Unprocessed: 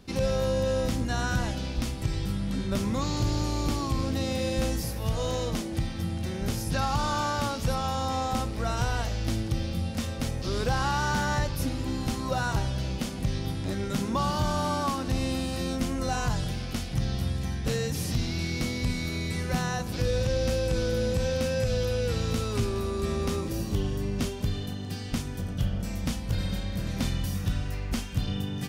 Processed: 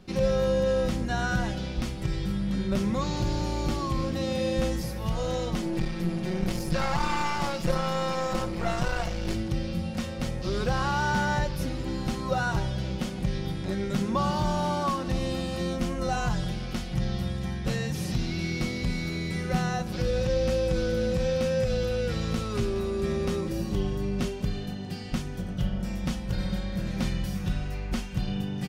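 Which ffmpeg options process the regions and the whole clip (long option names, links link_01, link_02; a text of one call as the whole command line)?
ffmpeg -i in.wav -filter_complex "[0:a]asettb=1/sr,asplit=3[link_01][link_02][link_03];[link_01]atrim=end=5.624[link_04];[link_02]atrim=start=5.62:end=9.35,asetpts=PTS-STARTPTS,afade=type=in:duration=0.004:curve=qsin,afade=type=out:start_time=3.726:duration=0.004:curve=qsin,aecho=1:1:5.9:0.98,atrim=end_sample=164493,aeval=exprs='clip(val(0),-1,0.02)':channel_layout=same[link_05];[link_03]atrim=start=9.346[link_06];[link_04][link_05]acrossfade=duration=0.004:curve1=hsin:curve2=qsin[link_07];[link_07][link_06]acrossfade=duration=0.004:curve1=qsin:curve2=hsin,highshelf=frequency=5900:gain=-9,aecho=1:1:5.5:0.49" out.wav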